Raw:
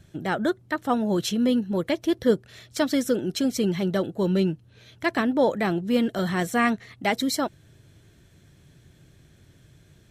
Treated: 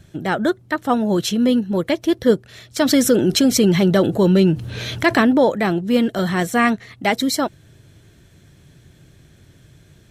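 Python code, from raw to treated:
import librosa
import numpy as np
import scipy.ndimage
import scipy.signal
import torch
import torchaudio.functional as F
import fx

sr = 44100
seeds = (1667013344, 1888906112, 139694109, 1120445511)

y = fx.env_flatten(x, sr, amount_pct=50, at=(2.84, 5.38), fade=0.02)
y = y * librosa.db_to_amplitude(5.5)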